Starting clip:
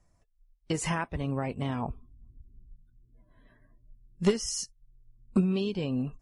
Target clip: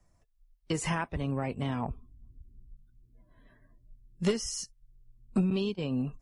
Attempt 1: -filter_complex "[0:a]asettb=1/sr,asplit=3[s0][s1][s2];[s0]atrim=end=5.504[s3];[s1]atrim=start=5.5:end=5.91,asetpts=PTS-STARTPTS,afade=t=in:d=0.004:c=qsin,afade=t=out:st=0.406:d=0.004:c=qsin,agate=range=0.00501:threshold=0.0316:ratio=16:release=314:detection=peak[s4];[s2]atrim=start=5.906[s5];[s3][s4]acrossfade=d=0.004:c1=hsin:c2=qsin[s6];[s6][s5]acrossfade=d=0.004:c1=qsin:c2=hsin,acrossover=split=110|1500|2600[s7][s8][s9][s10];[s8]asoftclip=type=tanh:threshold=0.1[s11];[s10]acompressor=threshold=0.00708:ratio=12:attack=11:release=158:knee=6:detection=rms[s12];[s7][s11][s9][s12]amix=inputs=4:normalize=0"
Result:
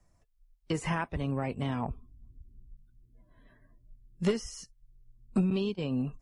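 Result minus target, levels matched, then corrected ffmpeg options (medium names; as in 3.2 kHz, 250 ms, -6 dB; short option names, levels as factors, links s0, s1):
compression: peak gain reduction +9.5 dB
-filter_complex "[0:a]asettb=1/sr,asplit=3[s0][s1][s2];[s0]atrim=end=5.504[s3];[s1]atrim=start=5.5:end=5.91,asetpts=PTS-STARTPTS,afade=t=in:d=0.004:c=qsin,afade=t=out:st=0.406:d=0.004:c=qsin,agate=range=0.00501:threshold=0.0316:ratio=16:release=314:detection=peak[s4];[s2]atrim=start=5.906[s5];[s3][s4]acrossfade=d=0.004:c1=hsin:c2=qsin[s6];[s6][s5]acrossfade=d=0.004:c1=qsin:c2=hsin,acrossover=split=110|1500|2600[s7][s8][s9][s10];[s8]asoftclip=type=tanh:threshold=0.1[s11];[s10]acompressor=threshold=0.0251:ratio=12:attack=11:release=158:knee=6:detection=rms[s12];[s7][s11][s9][s12]amix=inputs=4:normalize=0"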